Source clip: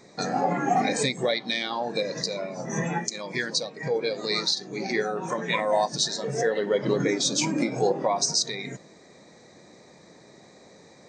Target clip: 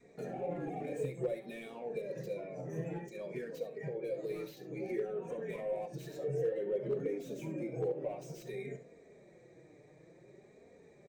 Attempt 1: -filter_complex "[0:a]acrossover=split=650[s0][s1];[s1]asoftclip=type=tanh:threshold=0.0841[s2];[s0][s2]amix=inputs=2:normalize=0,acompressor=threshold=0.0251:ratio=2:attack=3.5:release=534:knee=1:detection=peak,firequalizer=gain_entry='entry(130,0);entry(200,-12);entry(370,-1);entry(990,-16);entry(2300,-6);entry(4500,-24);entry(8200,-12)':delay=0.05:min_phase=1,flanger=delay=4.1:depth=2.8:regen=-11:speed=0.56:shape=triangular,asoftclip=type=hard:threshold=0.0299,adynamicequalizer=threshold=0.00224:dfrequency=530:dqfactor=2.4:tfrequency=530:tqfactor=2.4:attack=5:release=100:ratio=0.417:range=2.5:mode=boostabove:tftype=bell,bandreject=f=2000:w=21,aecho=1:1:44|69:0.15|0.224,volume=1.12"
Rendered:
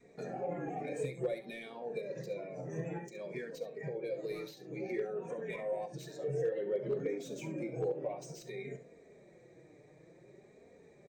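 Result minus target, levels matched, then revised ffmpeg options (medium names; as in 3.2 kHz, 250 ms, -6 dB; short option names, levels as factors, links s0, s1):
saturation: distortion -9 dB
-filter_complex "[0:a]acrossover=split=650[s0][s1];[s1]asoftclip=type=tanh:threshold=0.0211[s2];[s0][s2]amix=inputs=2:normalize=0,acompressor=threshold=0.0251:ratio=2:attack=3.5:release=534:knee=1:detection=peak,firequalizer=gain_entry='entry(130,0);entry(200,-12);entry(370,-1);entry(990,-16);entry(2300,-6);entry(4500,-24);entry(8200,-12)':delay=0.05:min_phase=1,flanger=delay=4.1:depth=2.8:regen=-11:speed=0.56:shape=triangular,asoftclip=type=hard:threshold=0.0299,adynamicequalizer=threshold=0.00224:dfrequency=530:dqfactor=2.4:tfrequency=530:tqfactor=2.4:attack=5:release=100:ratio=0.417:range=2.5:mode=boostabove:tftype=bell,bandreject=f=2000:w=21,aecho=1:1:44|69:0.15|0.224,volume=1.12"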